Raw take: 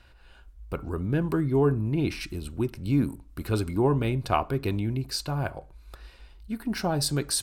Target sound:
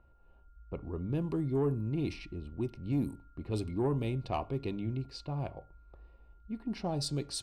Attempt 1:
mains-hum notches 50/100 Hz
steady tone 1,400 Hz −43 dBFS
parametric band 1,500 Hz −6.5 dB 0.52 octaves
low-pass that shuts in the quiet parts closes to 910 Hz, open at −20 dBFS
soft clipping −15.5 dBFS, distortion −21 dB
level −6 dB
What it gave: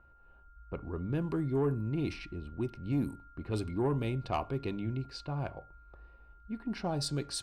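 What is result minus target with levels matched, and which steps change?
2,000 Hz band +3.5 dB
change: parametric band 1,500 Hz −18 dB 0.52 octaves

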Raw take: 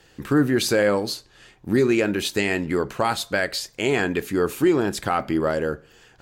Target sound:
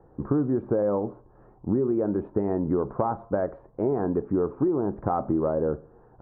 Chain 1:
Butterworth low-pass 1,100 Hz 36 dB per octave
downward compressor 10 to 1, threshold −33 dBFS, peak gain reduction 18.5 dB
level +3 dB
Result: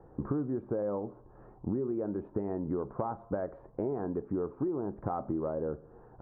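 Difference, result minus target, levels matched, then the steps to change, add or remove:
downward compressor: peak gain reduction +8.5 dB
change: downward compressor 10 to 1, threshold −23.5 dBFS, peak gain reduction 10 dB

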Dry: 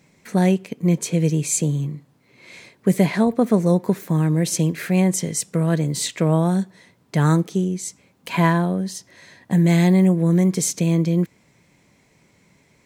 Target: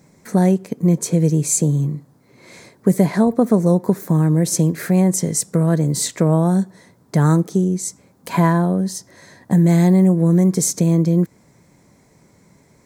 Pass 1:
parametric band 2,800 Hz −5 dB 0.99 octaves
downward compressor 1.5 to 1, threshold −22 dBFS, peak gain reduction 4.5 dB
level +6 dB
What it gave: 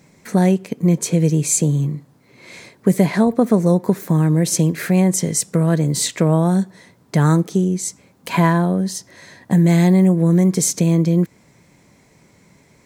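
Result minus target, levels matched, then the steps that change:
2,000 Hz band +3.5 dB
change: parametric band 2,800 Hz −13.5 dB 0.99 octaves

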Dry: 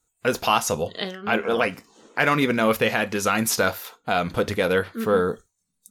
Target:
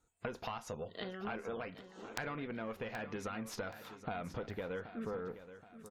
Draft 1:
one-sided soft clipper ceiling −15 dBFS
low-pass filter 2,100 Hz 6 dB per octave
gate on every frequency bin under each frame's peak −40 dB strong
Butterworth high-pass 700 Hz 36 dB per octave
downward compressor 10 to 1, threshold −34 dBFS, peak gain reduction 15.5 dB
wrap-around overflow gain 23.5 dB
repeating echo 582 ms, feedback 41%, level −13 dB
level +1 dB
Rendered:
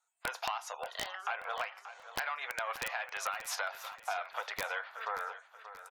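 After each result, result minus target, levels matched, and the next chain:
500 Hz band −7.5 dB; downward compressor: peak gain reduction −6.5 dB; echo 194 ms early
one-sided soft clipper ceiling −15 dBFS
low-pass filter 2,100 Hz 6 dB per octave
gate on every frequency bin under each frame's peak −40 dB strong
downward compressor 10 to 1, threshold −34 dBFS, peak gain reduction 17 dB
wrap-around overflow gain 23.5 dB
repeating echo 582 ms, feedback 41%, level −13 dB
level +1 dB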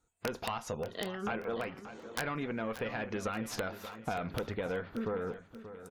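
downward compressor: peak gain reduction −5.5 dB; echo 194 ms early
one-sided soft clipper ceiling −15 dBFS
low-pass filter 2,100 Hz 6 dB per octave
gate on every frequency bin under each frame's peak −40 dB strong
downward compressor 10 to 1, threshold −40 dBFS, peak gain reduction 22.5 dB
wrap-around overflow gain 23.5 dB
repeating echo 582 ms, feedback 41%, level −13 dB
level +1 dB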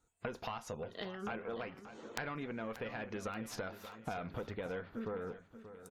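echo 194 ms early
one-sided soft clipper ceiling −15 dBFS
low-pass filter 2,100 Hz 6 dB per octave
gate on every frequency bin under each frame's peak −40 dB strong
downward compressor 10 to 1, threshold −40 dBFS, peak gain reduction 22.5 dB
wrap-around overflow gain 23.5 dB
repeating echo 776 ms, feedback 41%, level −13 dB
level +1 dB

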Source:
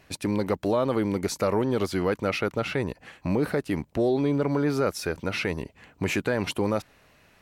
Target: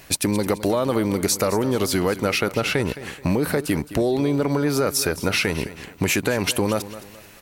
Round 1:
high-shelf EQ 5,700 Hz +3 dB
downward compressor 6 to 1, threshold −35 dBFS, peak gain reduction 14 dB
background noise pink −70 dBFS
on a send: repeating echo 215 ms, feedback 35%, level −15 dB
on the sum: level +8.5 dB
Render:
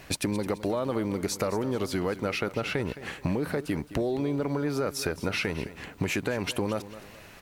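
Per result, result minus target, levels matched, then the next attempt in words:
downward compressor: peak gain reduction +7.5 dB; 8,000 Hz band −4.5 dB
high-shelf EQ 5,700 Hz +3 dB
downward compressor 6 to 1, threshold −26 dBFS, peak gain reduction 6.5 dB
background noise pink −70 dBFS
on a send: repeating echo 215 ms, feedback 35%, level −15 dB
on the sum: level +8.5 dB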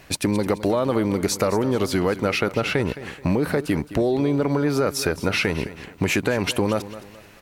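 8,000 Hz band −5.0 dB
high-shelf EQ 5,700 Hz +14.5 dB
downward compressor 6 to 1, threshold −26 dBFS, peak gain reduction 7 dB
background noise pink −70 dBFS
on a send: repeating echo 215 ms, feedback 35%, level −15 dB
on the sum: level +8.5 dB

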